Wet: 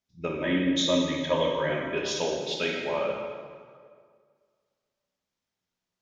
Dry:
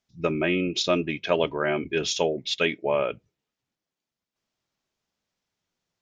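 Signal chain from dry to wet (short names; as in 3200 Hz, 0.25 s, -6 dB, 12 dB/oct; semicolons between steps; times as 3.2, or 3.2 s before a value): 0.4–1.71 ripple EQ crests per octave 1.1, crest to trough 14 dB; plate-style reverb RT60 1.9 s, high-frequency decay 0.75×, DRR -1.5 dB; gain -7 dB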